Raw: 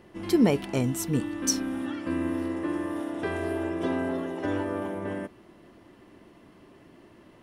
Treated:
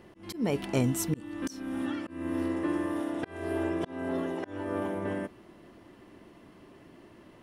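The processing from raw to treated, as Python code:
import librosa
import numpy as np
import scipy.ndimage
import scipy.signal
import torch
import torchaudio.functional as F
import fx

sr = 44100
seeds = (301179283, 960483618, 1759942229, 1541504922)

y = fx.auto_swell(x, sr, attack_ms=335.0)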